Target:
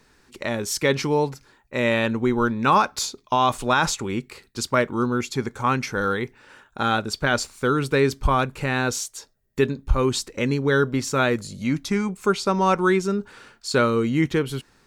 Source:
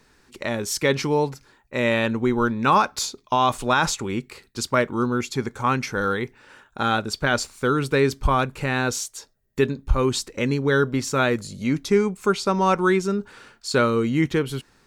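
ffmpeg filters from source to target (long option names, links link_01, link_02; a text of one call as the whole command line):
ffmpeg -i in.wav -filter_complex "[0:a]asettb=1/sr,asplit=3[link_01][link_02][link_03];[link_01]atrim=end=11.594[link_04];[link_02]atrim=start=11.59:end=12.09,asetpts=PTS-STARTPTS,afade=type=in:duration=0.004:curve=qsin,afade=type=out:start_time=0.496:duration=0.004:curve=qsin,equalizer=frequency=420:width=4.8:gain=-11.5[link_05];[link_03]atrim=start=12.086[link_06];[link_04][link_05]acrossfade=duration=0.004:curve1=hsin:curve2=qsin[link_07];[link_07][link_06]acrossfade=duration=0.004:curve1=qsin:curve2=hsin" out.wav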